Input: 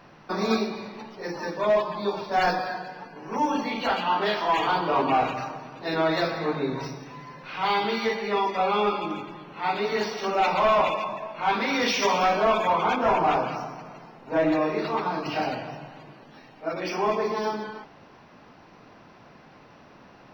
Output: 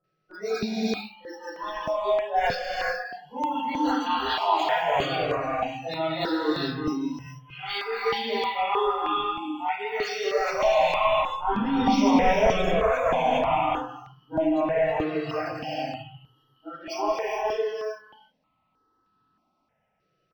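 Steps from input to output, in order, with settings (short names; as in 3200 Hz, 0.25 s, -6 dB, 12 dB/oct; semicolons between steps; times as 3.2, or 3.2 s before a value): 3.91–4.95 low shelf 74 Hz -12 dB; whine 1300 Hz -45 dBFS; 10.99–12.47 tilt -3 dB/oct; spectral noise reduction 25 dB; bands offset in time lows, highs 40 ms, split 1200 Hz; non-linear reverb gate 0.45 s rising, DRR -1 dB; step phaser 3.2 Hz 250–2200 Hz; gain +1.5 dB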